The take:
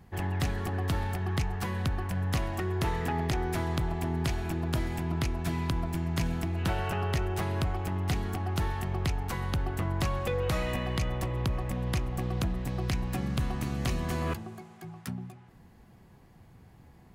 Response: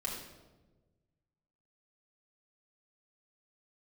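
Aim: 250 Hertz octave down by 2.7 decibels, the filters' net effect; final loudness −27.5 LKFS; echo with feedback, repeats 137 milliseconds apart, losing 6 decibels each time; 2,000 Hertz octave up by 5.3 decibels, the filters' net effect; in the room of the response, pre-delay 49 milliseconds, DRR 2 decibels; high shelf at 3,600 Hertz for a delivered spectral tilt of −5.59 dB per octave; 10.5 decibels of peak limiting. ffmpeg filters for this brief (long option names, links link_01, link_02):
-filter_complex "[0:a]equalizer=frequency=250:width_type=o:gain=-4.5,equalizer=frequency=2000:width_type=o:gain=8,highshelf=frequency=3600:gain=-5.5,alimiter=level_in=2dB:limit=-24dB:level=0:latency=1,volume=-2dB,aecho=1:1:137|274|411|548|685|822:0.501|0.251|0.125|0.0626|0.0313|0.0157,asplit=2[link_01][link_02];[1:a]atrim=start_sample=2205,adelay=49[link_03];[link_02][link_03]afir=irnorm=-1:irlink=0,volume=-4dB[link_04];[link_01][link_04]amix=inputs=2:normalize=0,volume=4dB"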